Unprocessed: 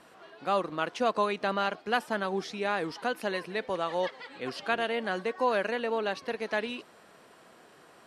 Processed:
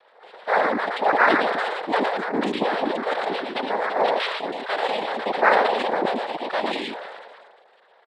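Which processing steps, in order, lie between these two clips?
formants replaced by sine waves; on a send: delay 117 ms -8.5 dB; on the sum: noise-vocoded speech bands 6; decay stretcher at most 32 dB/s; trim +5.5 dB

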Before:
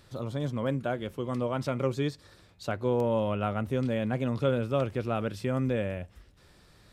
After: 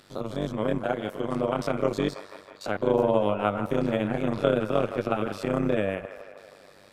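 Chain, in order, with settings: spectrogram pixelated in time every 50 ms; high-pass 190 Hz 12 dB/octave; on a send: feedback echo behind a band-pass 162 ms, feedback 69%, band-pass 1.2 kHz, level -10 dB; on the sum: AM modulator 98 Hz, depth 85%; trim +9 dB

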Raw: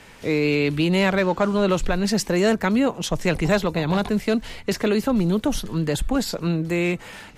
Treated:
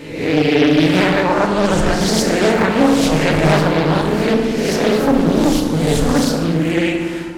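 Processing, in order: reverse spectral sustain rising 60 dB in 0.81 s; vibrato 14 Hz 72 cents; on a send: reverse echo 759 ms -22 dB; on the sum: FDN reverb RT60 1.7 s, low-frequency decay 1.4×, high-frequency decay 0.5×, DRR 0.5 dB; loudspeaker Doppler distortion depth 0.57 ms; trim +1.5 dB

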